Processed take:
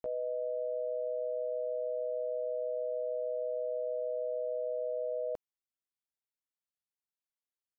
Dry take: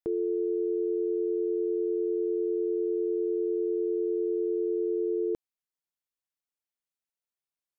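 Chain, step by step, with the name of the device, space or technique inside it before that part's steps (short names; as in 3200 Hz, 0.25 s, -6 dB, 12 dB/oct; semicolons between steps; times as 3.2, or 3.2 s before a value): chipmunk voice (pitch shift +6 st); gain -6.5 dB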